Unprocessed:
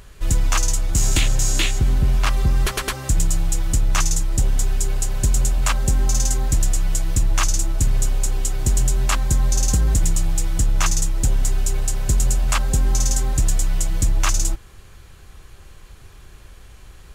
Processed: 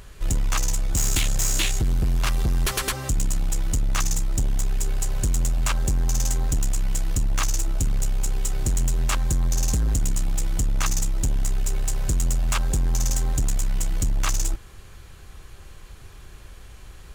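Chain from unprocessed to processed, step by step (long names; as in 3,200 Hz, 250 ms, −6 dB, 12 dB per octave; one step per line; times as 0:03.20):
0:00.97–0:02.92: high-shelf EQ 5,100 Hz +6.5 dB
soft clipping −17.5 dBFS, distortion −14 dB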